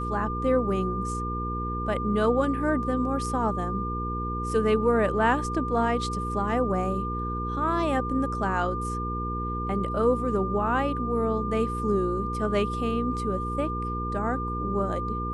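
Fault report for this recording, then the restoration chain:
hum 60 Hz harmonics 8 -32 dBFS
tone 1200 Hz -31 dBFS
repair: de-hum 60 Hz, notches 8; notch 1200 Hz, Q 30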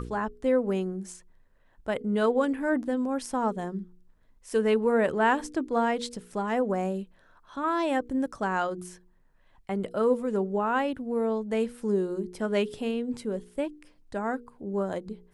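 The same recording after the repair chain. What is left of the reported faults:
none

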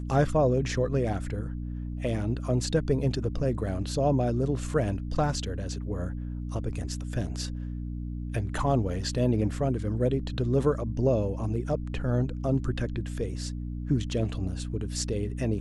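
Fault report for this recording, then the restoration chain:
hum 60 Hz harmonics 5 -34 dBFS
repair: de-hum 60 Hz, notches 5

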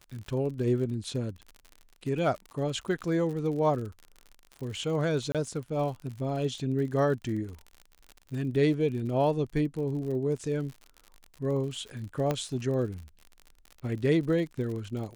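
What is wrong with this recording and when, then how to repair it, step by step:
crackle 54/s -37 dBFS
5.32–5.35 gap 27 ms
12.31 pop -15 dBFS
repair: de-click; interpolate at 5.32, 27 ms

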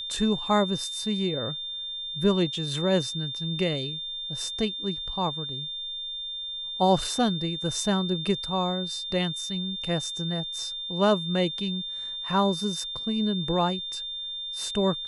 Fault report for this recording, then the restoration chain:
tone 3600 Hz -32 dBFS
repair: notch 3600 Hz, Q 30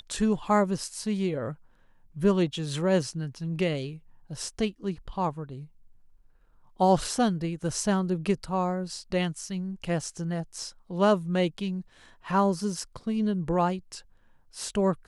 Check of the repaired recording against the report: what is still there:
none

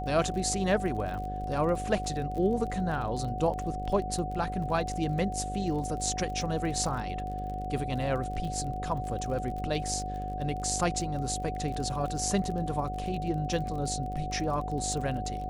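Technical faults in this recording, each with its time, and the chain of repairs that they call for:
buzz 50 Hz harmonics 13 -37 dBFS
crackle 31/s -36 dBFS
tone 740 Hz -35 dBFS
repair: de-click; de-hum 50 Hz, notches 13; notch 740 Hz, Q 30

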